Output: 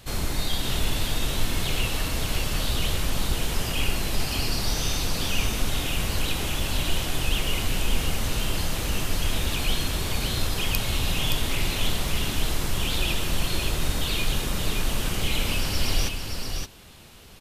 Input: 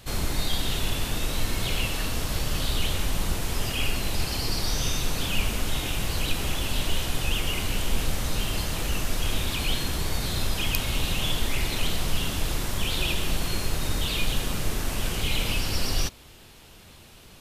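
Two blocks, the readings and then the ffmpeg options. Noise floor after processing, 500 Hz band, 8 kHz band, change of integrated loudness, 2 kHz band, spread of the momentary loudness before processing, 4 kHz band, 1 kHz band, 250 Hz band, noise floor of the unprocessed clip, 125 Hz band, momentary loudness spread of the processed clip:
-33 dBFS, +1.0 dB, +1.0 dB, +1.0 dB, +1.0 dB, 3 LU, +1.0 dB, +1.0 dB, +1.0 dB, -49 dBFS, +1.0 dB, 2 LU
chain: -af "aecho=1:1:570:0.562"

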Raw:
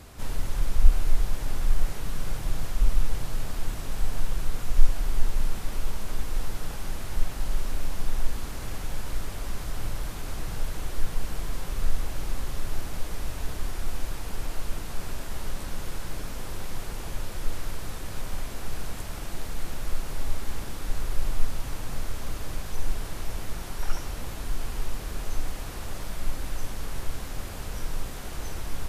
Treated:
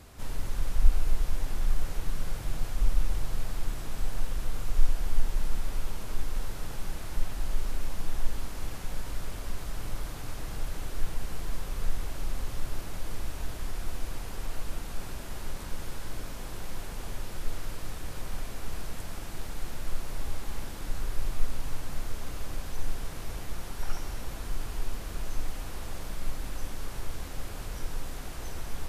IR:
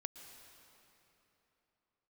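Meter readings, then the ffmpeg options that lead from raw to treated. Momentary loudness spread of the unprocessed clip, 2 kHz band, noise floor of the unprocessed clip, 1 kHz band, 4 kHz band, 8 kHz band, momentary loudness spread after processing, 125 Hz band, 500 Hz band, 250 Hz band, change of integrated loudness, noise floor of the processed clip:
7 LU, -3.0 dB, -36 dBFS, -3.0 dB, -3.5 dB, -3.5 dB, 7 LU, -3.0 dB, -3.0 dB, -3.0 dB, -3.0 dB, -39 dBFS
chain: -filter_complex "[1:a]atrim=start_sample=2205[s0];[0:a][s0]afir=irnorm=-1:irlink=0"

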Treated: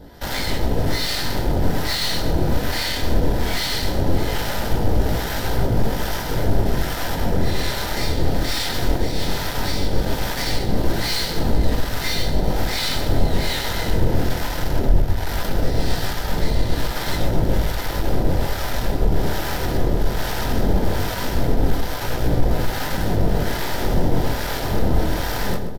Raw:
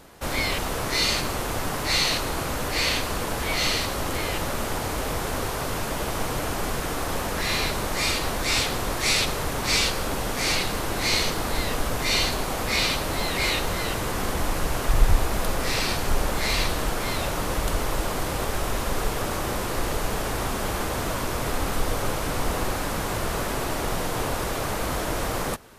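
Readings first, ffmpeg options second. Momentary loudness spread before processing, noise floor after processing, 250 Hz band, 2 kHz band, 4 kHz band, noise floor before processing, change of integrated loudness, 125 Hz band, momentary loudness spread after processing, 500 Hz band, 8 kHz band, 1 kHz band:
6 LU, -25 dBFS, +6.5 dB, -1.0 dB, 0.0 dB, -29 dBFS, +2.5 dB, +8.5 dB, 3 LU, +3.5 dB, -3.5 dB, 0.0 dB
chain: -filter_complex "[0:a]alimiter=limit=0.158:level=0:latency=1:release=210,flanger=delay=17.5:depth=7.8:speed=0.18,superequalizer=10b=0.631:12b=0.398:15b=0.355:16b=0.355,asoftclip=type=tanh:threshold=0.0891,aeval=exprs='0.0841*(cos(1*acos(clip(val(0)/0.0841,-1,1)))-cos(1*PI/2))+0.00075*(cos(2*acos(clip(val(0)/0.0841,-1,1)))-cos(2*PI/2))+0.00266*(cos(5*acos(clip(val(0)/0.0841,-1,1)))-cos(5*PI/2))+0.0119*(cos(8*acos(clip(val(0)/0.0841,-1,1)))-cos(8*PI/2))':c=same,asuperstop=centerf=1100:order=8:qfactor=7.3,aecho=1:1:129|258|387|516|645|774:0.376|0.203|0.11|0.0592|0.032|0.0173,acrossover=split=780[s0][s1];[s0]aeval=exprs='val(0)*(1-0.7/2+0.7/2*cos(2*PI*1.2*n/s))':c=same[s2];[s1]aeval=exprs='val(0)*(1-0.7/2-0.7/2*cos(2*PI*1.2*n/s))':c=same[s3];[s2][s3]amix=inputs=2:normalize=0,lowshelf=f=350:g=8.5,volume=2.37"

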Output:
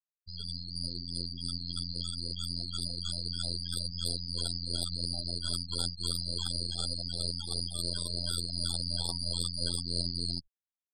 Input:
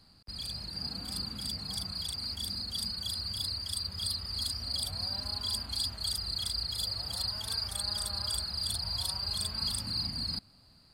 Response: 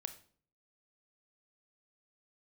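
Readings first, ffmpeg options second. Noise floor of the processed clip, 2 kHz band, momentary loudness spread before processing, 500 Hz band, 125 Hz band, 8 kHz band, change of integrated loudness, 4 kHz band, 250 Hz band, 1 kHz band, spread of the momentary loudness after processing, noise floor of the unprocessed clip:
under -85 dBFS, -6.5 dB, 4 LU, +6.0 dB, +4.0 dB, -1.0 dB, -1.0 dB, -1.5 dB, +5.0 dB, -5.0 dB, 5 LU, -60 dBFS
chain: -filter_complex "[0:a]asplit=2[s0][s1];[1:a]atrim=start_sample=2205,asetrate=33075,aresample=44100[s2];[s1][s2]afir=irnorm=-1:irlink=0,volume=0.841[s3];[s0][s3]amix=inputs=2:normalize=0,afftfilt=real='hypot(re,im)*cos(PI*b)':imag='0':win_size=2048:overlap=0.75,aeval=exprs='max(val(0),0)':c=same,afftfilt=real='re*gte(hypot(re,im),0.02)':imag='im*gte(hypot(re,im),0.02)':win_size=1024:overlap=0.75,volume=1.19"

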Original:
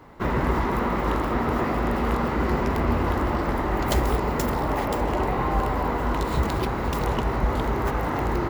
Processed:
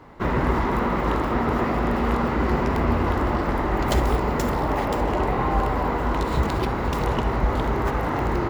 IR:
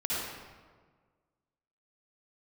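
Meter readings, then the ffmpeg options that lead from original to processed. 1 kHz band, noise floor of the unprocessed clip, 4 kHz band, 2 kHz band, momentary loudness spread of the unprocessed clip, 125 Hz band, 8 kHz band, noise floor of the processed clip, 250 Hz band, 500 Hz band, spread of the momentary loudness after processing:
+1.5 dB, -27 dBFS, +1.0 dB, +1.5 dB, 2 LU, +1.5 dB, -1.5 dB, -26 dBFS, +1.5 dB, +1.5 dB, 2 LU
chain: -filter_complex "[0:a]highshelf=f=9700:g=-8.5,asplit=2[s0][s1];[1:a]atrim=start_sample=2205,atrim=end_sample=3528[s2];[s1][s2]afir=irnorm=-1:irlink=0,volume=0.211[s3];[s0][s3]amix=inputs=2:normalize=0"

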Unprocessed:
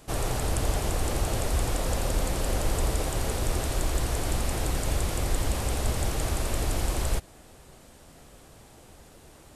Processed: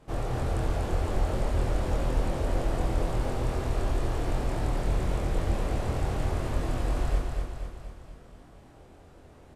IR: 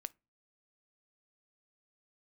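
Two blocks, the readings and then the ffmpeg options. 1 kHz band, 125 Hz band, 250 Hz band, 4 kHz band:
-1.0 dB, 0.0 dB, +0.5 dB, -8.5 dB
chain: -filter_complex "[0:a]lowpass=f=1400:p=1,asplit=2[s0][s1];[s1]adelay=24,volume=0.75[s2];[s0][s2]amix=inputs=2:normalize=0,aecho=1:1:241|482|723|964|1205|1446|1687:0.631|0.341|0.184|0.0994|0.0537|0.029|0.0156,volume=0.668"

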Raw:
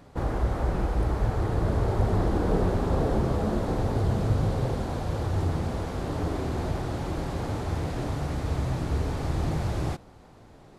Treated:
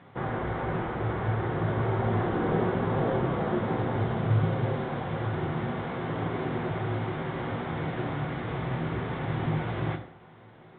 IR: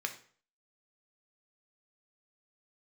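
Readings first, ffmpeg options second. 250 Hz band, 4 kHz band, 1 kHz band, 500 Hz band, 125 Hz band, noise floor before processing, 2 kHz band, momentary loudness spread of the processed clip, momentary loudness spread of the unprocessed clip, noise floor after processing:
-0.5 dB, -1.5 dB, +1.5 dB, 0.0 dB, -2.0 dB, -51 dBFS, +4.5 dB, 6 LU, 6 LU, -51 dBFS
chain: -filter_complex "[0:a]acrusher=samples=4:mix=1:aa=0.000001[s0];[1:a]atrim=start_sample=2205,asetrate=39249,aresample=44100[s1];[s0][s1]afir=irnorm=-1:irlink=0" -ar 8000 -c:a pcm_alaw

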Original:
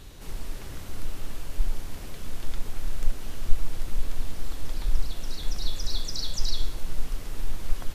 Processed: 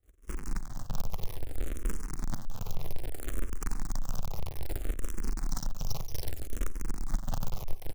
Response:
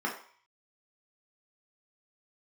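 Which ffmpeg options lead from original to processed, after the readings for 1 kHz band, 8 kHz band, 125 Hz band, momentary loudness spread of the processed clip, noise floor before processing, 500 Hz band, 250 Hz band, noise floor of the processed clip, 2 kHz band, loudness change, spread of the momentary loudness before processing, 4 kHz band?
+1.0 dB, no reading, -1.5 dB, 4 LU, -39 dBFS, 0.0 dB, +1.5 dB, -44 dBFS, -3.5 dB, -3.0 dB, 9 LU, -12.0 dB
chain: -filter_complex "[0:a]firequalizer=gain_entry='entry(120,0);entry(170,1);entry(260,-11);entry(410,-10);entry(3500,-28);entry(5900,7);entry(8500,2)':delay=0.05:min_phase=1,agate=range=0.0224:threshold=0.0398:ratio=3:detection=peak,highshelf=f=1700:t=q:w=3:g=-14,acrossover=split=240|1600[s0][s1][s2];[s0]acompressor=threshold=0.0562:ratio=12[s3];[s3][s1][s2]amix=inputs=3:normalize=0,bandreject=f=60:t=h:w=6,bandreject=f=120:t=h:w=6,bandreject=f=180:t=h:w=6,bandreject=f=240:t=h:w=6,aecho=1:1:2.5:0.72,asplit=2[s4][s5];[s5]adelay=110,lowpass=f=4400:p=1,volume=0.141,asplit=2[s6][s7];[s7]adelay=110,lowpass=f=4400:p=1,volume=0.39,asplit=2[s8][s9];[s9]adelay=110,lowpass=f=4400:p=1,volume=0.39[s10];[s4][s6][s8][s10]amix=inputs=4:normalize=0,asplit=2[s11][s12];[1:a]atrim=start_sample=2205,atrim=end_sample=6174[s13];[s12][s13]afir=irnorm=-1:irlink=0,volume=0.0562[s14];[s11][s14]amix=inputs=2:normalize=0,acrusher=bits=2:mode=log:mix=0:aa=0.000001,alimiter=level_in=1.06:limit=0.0631:level=0:latency=1:release=48,volume=0.944,tremolo=f=21:d=0.71,asplit=2[s15][s16];[s16]afreqshift=-0.62[s17];[s15][s17]amix=inputs=2:normalize=1,volume=2.51"

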